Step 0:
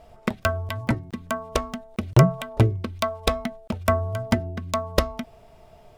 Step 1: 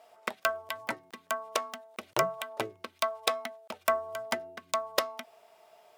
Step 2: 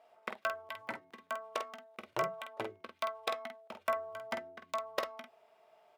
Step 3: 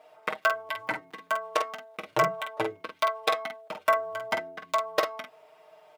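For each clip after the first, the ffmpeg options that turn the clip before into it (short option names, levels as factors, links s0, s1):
-af "highpass=630,highshelf=f=12000:g=5.5,volume=0.708"
-af "bass=f=250:g=0,treble=f=4000:g=-10,aecho=1:1:18|48:0.15|0.473,volume=0.473"
-af "aecho=1:1:6.5:0.81,volume=2.37"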